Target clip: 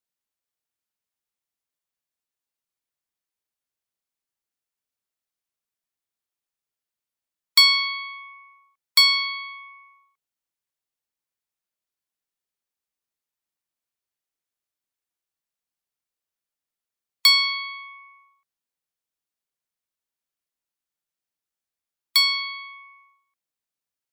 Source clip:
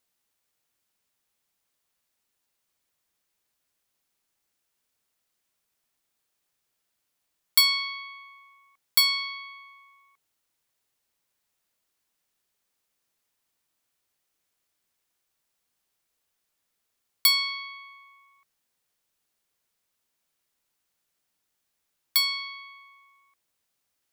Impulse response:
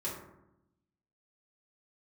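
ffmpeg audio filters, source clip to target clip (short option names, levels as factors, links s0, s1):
-filter_complex "[0:a]afftdn=nr=18:nf=-43,acrossover=split=2000|7900[s0][s1][s2];[s2]acompressor=threshold=0.0158:ratio=6[s3];[s0][s1][s3]amix=inputs=3:normalize=0,volume=2.11"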